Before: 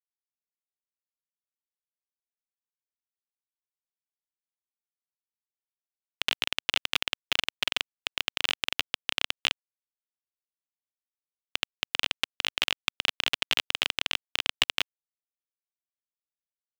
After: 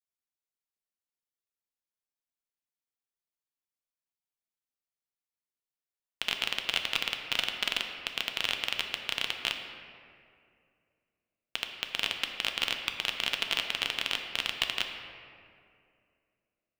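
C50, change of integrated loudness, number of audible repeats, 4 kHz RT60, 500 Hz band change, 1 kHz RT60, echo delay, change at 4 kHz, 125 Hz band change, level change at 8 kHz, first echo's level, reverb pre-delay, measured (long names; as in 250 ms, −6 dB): 5.5 dB, −2.0 dB, no echo audible, 1.3 s, −0.5 dB, 2.1 s, no echo audible, −2.0 dB, −1.5 dB, −2.5 dB, no echo audible, 4 ms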